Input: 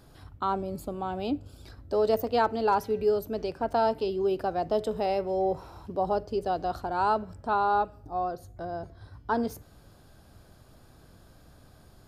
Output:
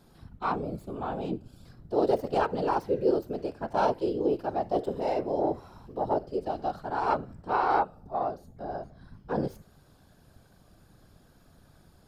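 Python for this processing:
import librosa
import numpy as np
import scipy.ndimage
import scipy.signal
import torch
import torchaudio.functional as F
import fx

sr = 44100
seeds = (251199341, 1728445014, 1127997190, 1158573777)

y = fx.tracing_dist(x, sr, depth_ms=0.048)
y = fx.hpss(y, sr, part='percussive', gain_db=-12)
y = fx.whisperise(y, sr, seeds[0])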